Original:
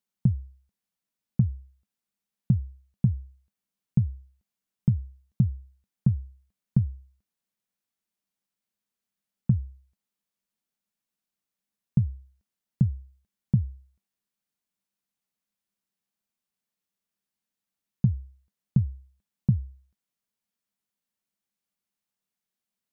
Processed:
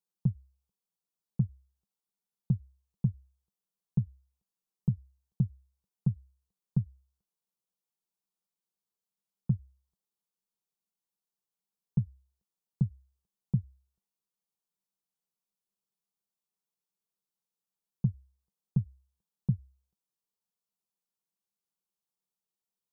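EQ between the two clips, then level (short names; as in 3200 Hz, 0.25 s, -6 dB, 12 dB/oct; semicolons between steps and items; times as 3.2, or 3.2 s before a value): bell 540 Hz +14 dB 0.3 oct; fixed phaser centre 380 Hz, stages 8; -4.5 dB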